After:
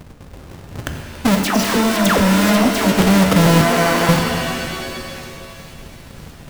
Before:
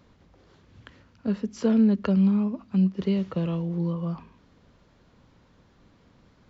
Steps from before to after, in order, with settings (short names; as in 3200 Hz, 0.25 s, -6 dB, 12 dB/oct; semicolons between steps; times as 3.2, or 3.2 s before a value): half-waves squared off; 3.61–4.09 HPF 600 Hz 12 dB/oct; negative-ratio compressor -24 dBFS, ratio -1; 1.43–2.92 dispersion lows, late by 0.13 s, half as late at 1300 Hz; sample leveller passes 3; on a send: thin delay 1.06 s, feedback 59%, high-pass 2100 Hz, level -19.5 dB; on the sum: shimmer reverb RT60 2.2 s, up +7 st, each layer -2 dB, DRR 5 dB; gain +2.5 dB